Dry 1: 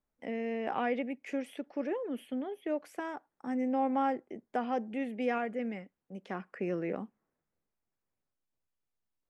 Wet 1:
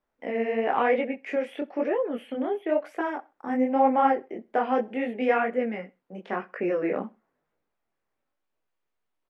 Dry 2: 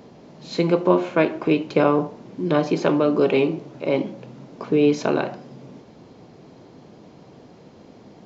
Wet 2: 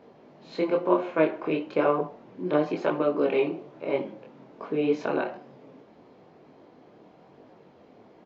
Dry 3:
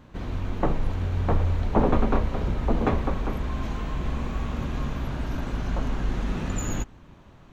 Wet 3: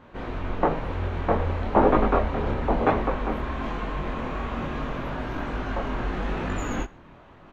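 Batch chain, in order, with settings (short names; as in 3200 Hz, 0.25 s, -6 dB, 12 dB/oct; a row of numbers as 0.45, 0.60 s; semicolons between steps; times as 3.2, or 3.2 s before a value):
chorus voices 2, 1 Hz, delay 23 ms, depth 4.3 ms; tone controls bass -10 dB, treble -15 dB; feedback echo 64 ms, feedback 35%, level -24 dB; match loudness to -27 LUFS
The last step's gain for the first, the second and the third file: +13.0, -1.0, +9.0 dB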